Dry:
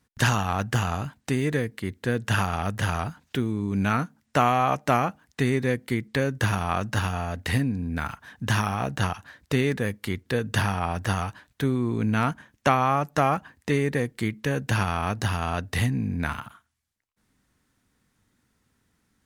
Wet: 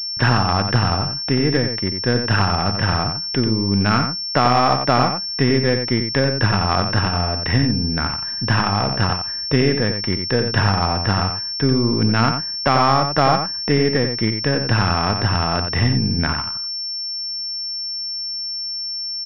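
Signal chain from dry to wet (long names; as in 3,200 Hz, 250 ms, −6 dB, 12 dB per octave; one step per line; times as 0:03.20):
gain on one half-wave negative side −3 dB
on a send: single-tap delay 90 ms −7 dB
on the sum: boost into a limiter +8.5 dB
switching amplifier with a slow clock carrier 5,400 Hz
level −1 dB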